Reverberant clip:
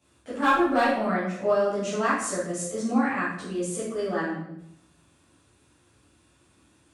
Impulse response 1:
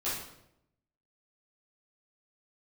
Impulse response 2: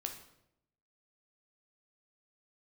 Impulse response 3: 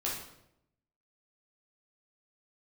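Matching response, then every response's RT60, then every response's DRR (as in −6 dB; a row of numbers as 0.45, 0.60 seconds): 1; 0.80, 0.80, 0.80 seconds; −11.5, 3.5, −5.5 decibels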